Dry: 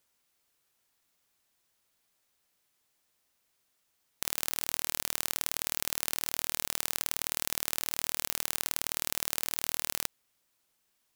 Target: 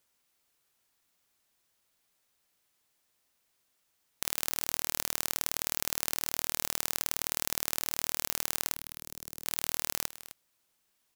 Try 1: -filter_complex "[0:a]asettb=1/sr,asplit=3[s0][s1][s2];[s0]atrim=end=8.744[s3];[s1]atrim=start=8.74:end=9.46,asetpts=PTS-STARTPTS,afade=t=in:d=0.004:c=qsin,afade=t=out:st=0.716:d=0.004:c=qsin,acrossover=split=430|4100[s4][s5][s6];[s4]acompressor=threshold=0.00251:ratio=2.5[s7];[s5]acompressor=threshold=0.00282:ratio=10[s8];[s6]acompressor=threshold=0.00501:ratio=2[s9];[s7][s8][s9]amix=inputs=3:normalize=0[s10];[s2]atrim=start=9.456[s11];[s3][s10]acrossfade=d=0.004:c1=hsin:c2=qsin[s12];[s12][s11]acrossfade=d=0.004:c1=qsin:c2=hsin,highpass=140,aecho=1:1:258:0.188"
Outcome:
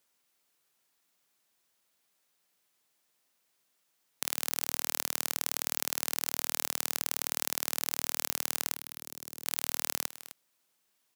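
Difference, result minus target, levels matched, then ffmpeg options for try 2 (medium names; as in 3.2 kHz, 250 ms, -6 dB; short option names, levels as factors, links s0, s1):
125 Hz band -4.0 dB
-filter_complex "[0:a]asettb=1/sr,asplit=3[s0][s1][s2];[s0]atrim=end=8.744[s3];[s1]atrim=start=8.74:end=9.46,asetpts=PTS-STARTPTS,afade=t=in:d=0.004:c=qsin,afade=t=out:st=0.716:d=0.004:c=qsin,acrossover=split=430|4100[s4][s5][s6];[s4]acompressor=threshold=0.00251:ratio=2.5[s7];[s5]acompressor=threshold=0.00282:ratio=10[s8];[s6]acompressor=threshold=0.00501:ratio=2[s9];[s7][s8][s9]amix=inputs=3:normalize=0[s10];[s2]atrim=start=9.456[s11];[s3][s10]acrossfade=d=0.004:c1=hsin:c2=qsin[s12];[s12][s11]acrossfade=d=0.004:c1=qsin:c2=hsin,aecho=1:1:258:0.188"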